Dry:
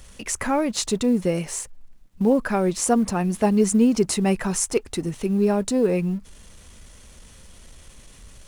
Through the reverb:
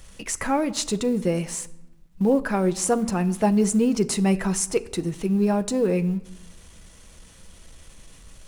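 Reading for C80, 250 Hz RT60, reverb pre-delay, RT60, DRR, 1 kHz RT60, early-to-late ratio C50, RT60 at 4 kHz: 20.5 dB, 1.2 s, 6 ms, 0.95 s, 10.5 dB, 0.95 s, 18.5 dB, 0.65 s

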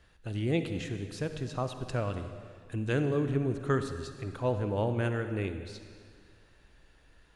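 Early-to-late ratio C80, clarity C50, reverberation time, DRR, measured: 9.5 dB, 8.5 dB, 2.0 s, 8.0 dB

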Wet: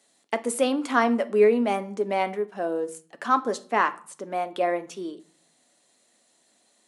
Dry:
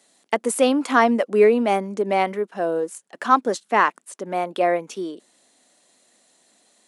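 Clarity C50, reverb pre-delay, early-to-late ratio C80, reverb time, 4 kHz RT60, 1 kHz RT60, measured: 18.0 dB, 7 ms, 22.0 dB, 0.45 s, 0.35 s, 0.45 s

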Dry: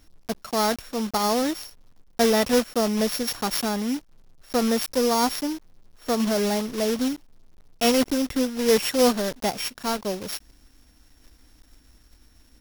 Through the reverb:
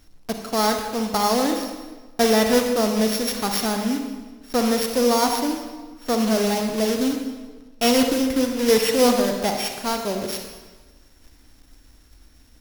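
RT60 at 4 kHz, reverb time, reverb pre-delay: 1.1 s, 1.3 s, 39 ms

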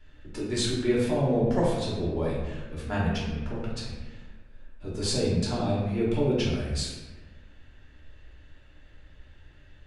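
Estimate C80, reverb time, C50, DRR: 3.5 dB, 1.2 s, 0.5 dB, −7.0 dB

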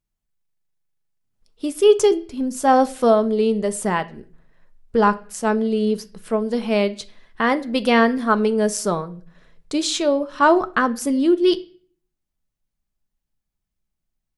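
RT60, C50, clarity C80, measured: 0.45 s, 19.5 dB, 23.0 dB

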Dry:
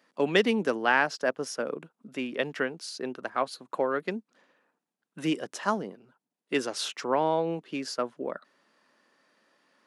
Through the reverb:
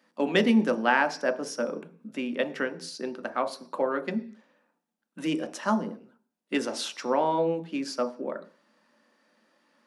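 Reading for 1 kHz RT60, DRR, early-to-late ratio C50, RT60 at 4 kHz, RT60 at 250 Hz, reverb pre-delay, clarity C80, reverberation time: 0.45 s, 6.5 dB, 15.0 dB, can't be measured, 0.55 s, 3 ms, 19.5 dB, 0.45 s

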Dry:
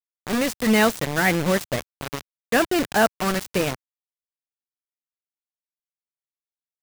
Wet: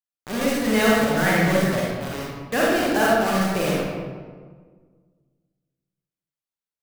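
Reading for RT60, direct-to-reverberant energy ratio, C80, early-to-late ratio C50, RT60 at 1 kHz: 1.6 s, −5.5 dB, 0.5 dB, −3.0 dB, 1.5 s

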